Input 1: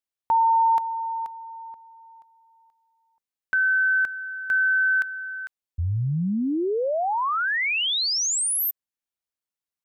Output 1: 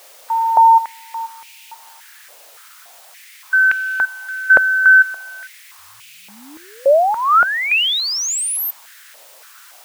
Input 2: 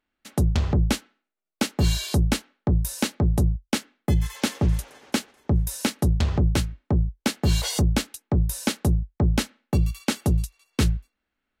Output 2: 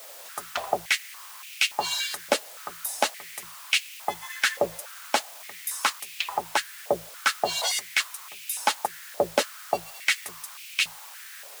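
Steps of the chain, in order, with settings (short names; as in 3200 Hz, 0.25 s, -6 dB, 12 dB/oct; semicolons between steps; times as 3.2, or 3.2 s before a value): per-bin expansion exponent 1.5; requantised 8-bit, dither triangular; stepped high-pass 3.5 Hz 570–2500 Hz; gain +3.5 dB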